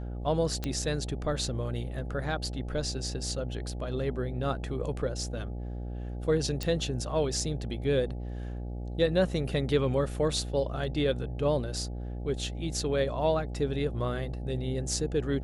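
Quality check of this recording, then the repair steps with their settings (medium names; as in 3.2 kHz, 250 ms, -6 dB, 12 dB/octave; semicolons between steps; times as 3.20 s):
buzz 60 Hz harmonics 14 -36 dBFS
0.64 s: pop -17 dBFS
6.63 s: pop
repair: de-click; de-hum 60 Hz, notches 14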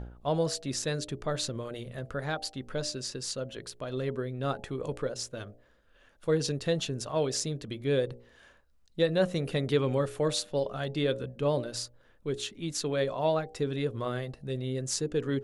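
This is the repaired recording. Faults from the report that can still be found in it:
nothing left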